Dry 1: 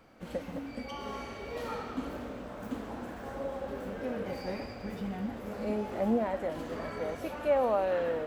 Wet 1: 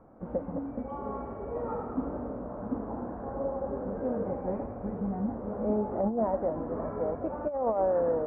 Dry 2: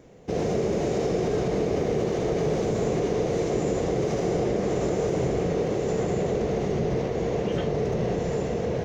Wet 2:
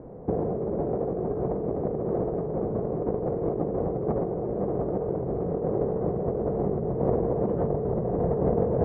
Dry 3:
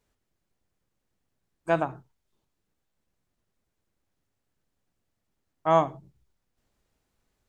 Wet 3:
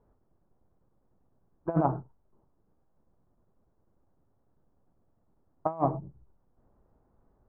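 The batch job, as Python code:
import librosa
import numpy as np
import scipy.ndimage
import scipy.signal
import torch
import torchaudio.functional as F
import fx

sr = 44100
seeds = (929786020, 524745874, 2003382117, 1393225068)

y = scipy.signal.sosfilt(scipy.signal.butter(4, 1100.0, 'lowpass', fs=sr, output='sos'), x)
y = fx.over_compress(y, sr, threshold_db=-29.0, ratio=-0.5)
y = F.gain(torch.from_numpy(y), 3.5).numpy()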